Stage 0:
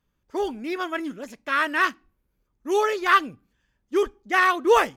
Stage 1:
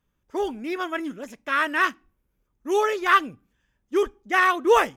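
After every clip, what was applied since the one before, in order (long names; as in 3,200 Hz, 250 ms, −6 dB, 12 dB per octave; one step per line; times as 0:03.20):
parametric band 4,400 Hz −8 dB 0.21 octaves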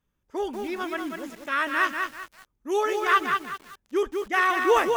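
feedback echo at a low word length 192 ms, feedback 35%, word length 7 bits, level −4.5 dB
level −3 dB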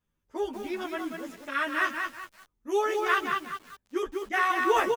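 barber-pole flanger 10.8 ms +1.2 Hz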